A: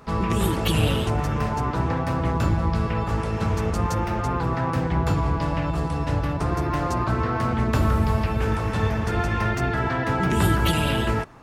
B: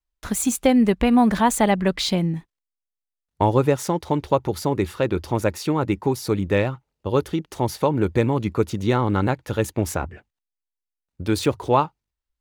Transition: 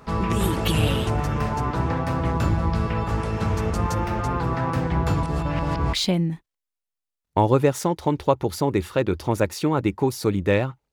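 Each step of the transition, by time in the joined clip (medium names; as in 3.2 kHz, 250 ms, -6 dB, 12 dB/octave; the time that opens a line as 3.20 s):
A
5.23–5.93 s: reverse
5.93 s: go over to B from 1.97 s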